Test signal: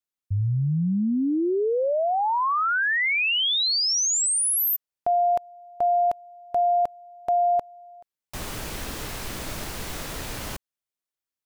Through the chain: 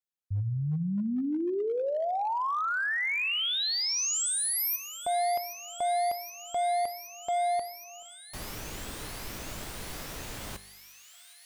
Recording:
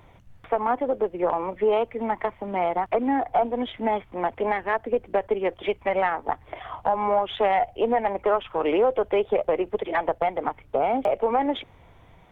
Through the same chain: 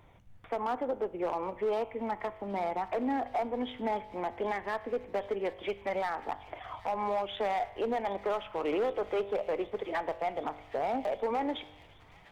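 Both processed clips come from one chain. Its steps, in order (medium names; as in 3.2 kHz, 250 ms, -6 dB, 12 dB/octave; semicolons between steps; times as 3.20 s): in parallel at -1.5 dB: peak limiter -18.5 dBFS; on the sum: feedback comb 50 Hz, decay 0.96 s, harmonics all, mix 50%; hard clipper -18.5 dBFS; feedback echo behind a high-pass 770 ms, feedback 80%, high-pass 2.3 kHz, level -14 dB; trim -7 dB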